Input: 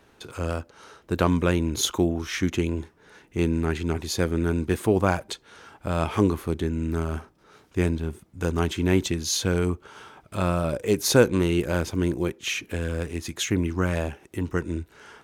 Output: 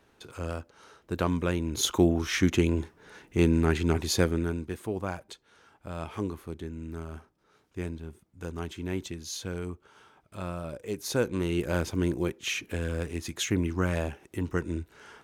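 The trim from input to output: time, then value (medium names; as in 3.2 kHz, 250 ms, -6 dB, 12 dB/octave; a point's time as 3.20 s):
1.64 s -6 dB
2.05 s +1 dB
4.18 s +1 dB
4.73 s -11.5 dB
11.05 s -11.5 dB
11.74 s -3 dB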